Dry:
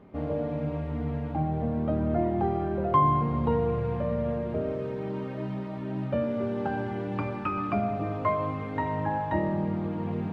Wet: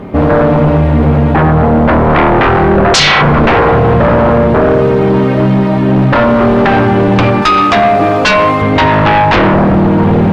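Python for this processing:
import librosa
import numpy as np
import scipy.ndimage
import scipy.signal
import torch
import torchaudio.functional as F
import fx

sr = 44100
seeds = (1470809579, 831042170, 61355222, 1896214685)

y = fx.bass_treble(x, sr, bass_db=-11, treble_db=6, at=(7.42, 8.62))
y = fx.fold_sine(y, sr, drive_db=15, ceiling_db=-12.0)
y = F.gain(torch.from_numpy(y), 7.5).numpy()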